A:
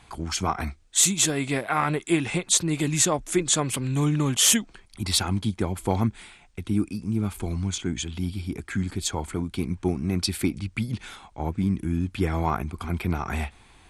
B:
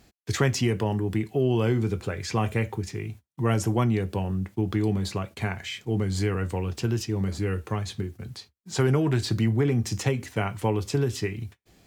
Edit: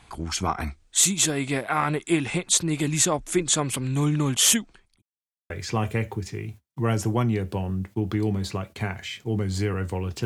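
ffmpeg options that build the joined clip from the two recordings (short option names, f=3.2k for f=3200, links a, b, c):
-filter_complex "[0:a]apad=whole_dur=10.25,atrim=end=10.25,asplit=2[a][b];[a]atrim=end=5.02,asetpts=PTS-STARTPTS,afade=t=out:st=4.51:d=0.51[c];[b]atrim=start=5.02:end=5.5,asetpts=PTS-STARTPTS,volume=0[d];[1:a]atrim=start=2.11:end=6.86,asetpts=PTS-STARTPTS,afade=t=in:d=0.004:c=hsin[e];[c][d][e]concat=n=3:v=0:a=1"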